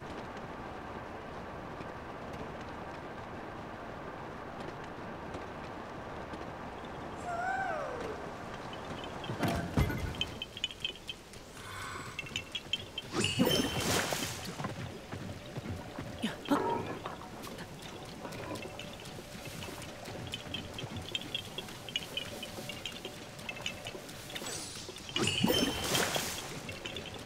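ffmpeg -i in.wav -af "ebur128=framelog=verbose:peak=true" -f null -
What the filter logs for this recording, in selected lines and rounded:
Integrated loudness:
  I:         -37.5 LUFS
  Threshold: -47.5 LUFS
Loudness range:
  LRA:         9.8 LU
  Threshold: -57.7 LUFS
  LRA low:   -43.4 LUFS
  LRA high:  -33.6 LUFS
True peak:
  Peak:      -13.7 dBFS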